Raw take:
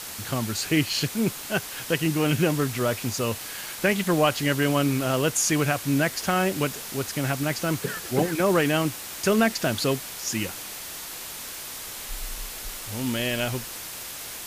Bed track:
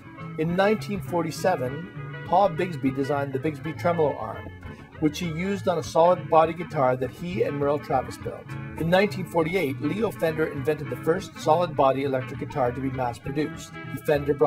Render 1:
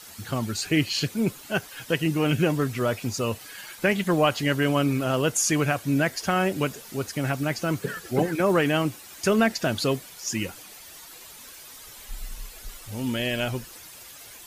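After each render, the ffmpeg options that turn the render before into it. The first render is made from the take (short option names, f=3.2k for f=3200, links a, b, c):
-af "afftdn=nr=11:nf=-37"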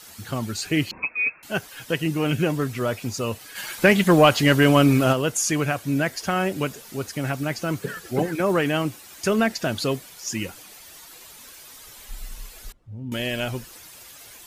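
-filter_complex "[0:a]asettb=1/sr,asplit=3[a][b][c];[a]atrim=end=0.914[d];[b]atrim=start=0.91:end=1.43,asetpts=PTS-STARTPTS,afade=t=in:d=0.004:c=qsin,afade=t=out:st=0.516:d=0.004:c=qsin,lowpass=f=2.3k:t=q:w=0.5098,lowpass=f=2.3k:t=q:w=0.6013,lowpass=f=2.3k:t=q:w=0.9,lowpass=f=2.3k:t=q:w=2.563,afreqshift=-2700[e];[c]atrim=start=1.426[f];[d][e]acrossfade=d=0.004:c1=hsin:c2=qsin[g];[g][f]acrossfade=d=0.004:c1=qsin:c2=hsin,asplit=3[h][i][j];[h]afade=t=out:st=3.55:d=0.02[k];[i]acontrast=89,afade=t=in:st=3.55:d=0.02,afade=t=out:st=5.12:d=0.02[l];[j]afade=t=in:st=5.12:d=0.02[m];[k][l][m]amix=inputs=3:normalize=0,asettb=1/sr,asplit=3[n][o][p];[n]atrim=end=12.724[q];[o]atrim=start=12.72:end=13.12,asetpts=PTS-STARTPTS,afade=t=in:d=0.004:c=qsin,afade=t=out:st=0.396:d=0.004:c=qsin,bandpass=f=110:t=q:w=1.1[r];[p]atrim=start=13.116[s];[q][r]acrossfade=d=0.004:c1=hsin:c2=qsin[t];[t][s]acrossfade=d=0.004:c1=qsin:c2=hsin"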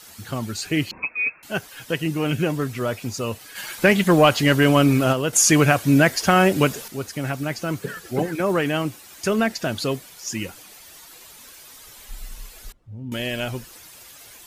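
-filter_complex "[0:a]asplit=3[a][b][c];[a]atrim=end=5.332[d];[b]atrim=start=5.328:end=6.882,asetpts=PTS-STARTPTS,volume=7.5dB[e];[c]atrim=start=6.878[f];[d][e]acrossfade=d=0.004:c1=hsin:c2=hsin[g];[g][f]acrossfade=d=0.004:c1=hsin:c2=hsin"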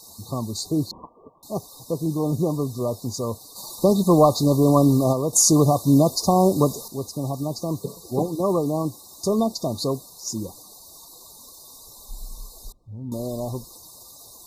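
-af "afftfilt=real='re*(1-between(b*sr/4096,1200,3600))':imag='im*(1-between(b*sr/4096,1200,3600))':win_size=4096:overlap=0.75"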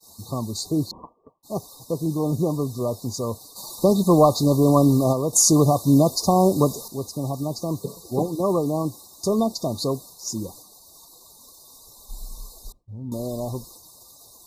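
-af "agate=range=-33dB:threshold=-41dB:ratio=3:detection=peak"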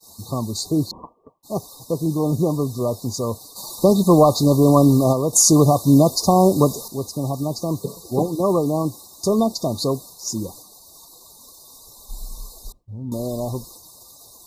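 -af "volume=3dB,alimiter=limit=-3dB:level=0:latency=1"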